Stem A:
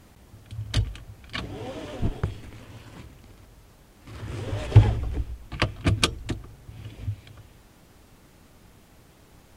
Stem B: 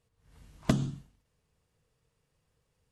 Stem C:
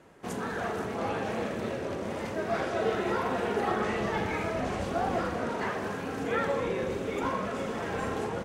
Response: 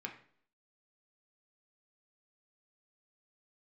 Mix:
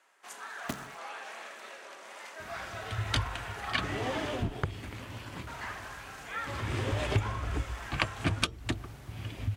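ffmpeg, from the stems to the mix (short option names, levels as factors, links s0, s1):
-filter_complex "[0:a]equalizer=f=1600:w=0.44:g=5,acompressor=threshold=0.0447:ratio=6,adelay=2400,volume=1.12[s0];[1:a]equalizer=f=120:t=o:w=1.6:g=-8,acrusher=bits=5:dc=4:mix=0:aa=0.000001,volume=0.398[s1];[2:a]highpass=1100,equalizer=f=7800:w=1.5:g=2.5,volume=0.668,asplit=3[s2][s3][s4];[s2]atrim=end=4.29,asetpts=PTS-STARTPTS,afade=t=out:st=4.286:d=0.004:c=hsin[s5];[s3]atrim=start=4.29:end=5.47,asetpts=PTS-STARTPTS,volume=0[s6];[s4]atrim=start=5.47,asetpts=PTS-STARTPTS,afade=t=in:d=0.004:c=hsin[s7];[s5][s6][s7]concat=n=3:v=0:a=1[s8];[s0][s1][s8]amix=inputs=3:normalize=0,highpass=49,bandreject=f=480:w=12"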